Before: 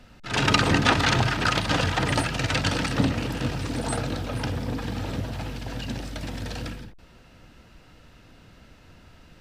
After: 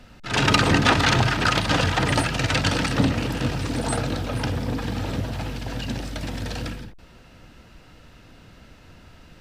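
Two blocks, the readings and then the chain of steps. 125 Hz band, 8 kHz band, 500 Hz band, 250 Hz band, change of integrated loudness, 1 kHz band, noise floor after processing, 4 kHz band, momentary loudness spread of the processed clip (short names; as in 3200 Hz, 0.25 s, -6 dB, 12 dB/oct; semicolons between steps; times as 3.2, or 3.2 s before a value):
+2.5 dB, +2.5 dB, +2.5 dB, +2.5 dB, +2.5 dB, +2.5 dB, -49 dBFS, +2.5 dB, 13 LU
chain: soft clip -8.5 dBFS, distortion -25 dB; gain +3 dB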